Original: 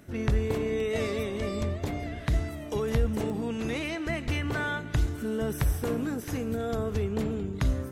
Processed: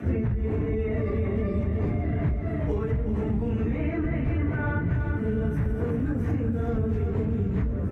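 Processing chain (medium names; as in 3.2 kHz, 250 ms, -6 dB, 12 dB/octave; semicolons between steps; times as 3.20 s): phase randomisation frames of 100 ms; high-pass 67 Hz; peak limiter -24.5 dBFS, peak gain reduction 9 dB; RIAA curve playback; compression, threshold -23 dBFS, peak gain reduction 10 dB; resonant high shelf 2.8 kHz -8.5 dB, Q 1.5; feedback delay 374 ms, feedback 52%, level -8.5 dB; three bands compressed up and down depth 100%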